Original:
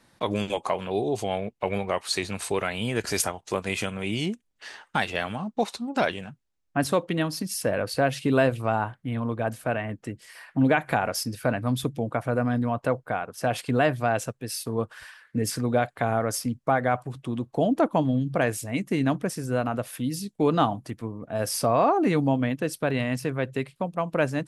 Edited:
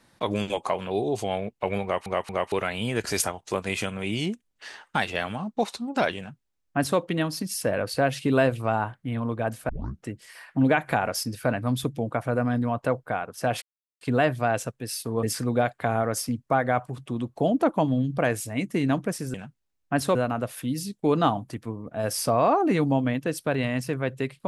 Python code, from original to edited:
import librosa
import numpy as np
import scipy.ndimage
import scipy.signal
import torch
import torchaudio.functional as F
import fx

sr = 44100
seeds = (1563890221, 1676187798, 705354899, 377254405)

y = fx.edit(x, sr, fx.stutter_over(start_s=1.83, slice_s=0.23, count=3),
    fx.duplicate(start_s=6.18, length_s=0.81, to_s=19.51),
    fx.tape_start(start_s=9.69, length_s=0.34),
    fx.insert_silence(at_s=13.62, length_s=0.39),
    fx.cut(start_s=14.84, length_s=0.56), tone=tone)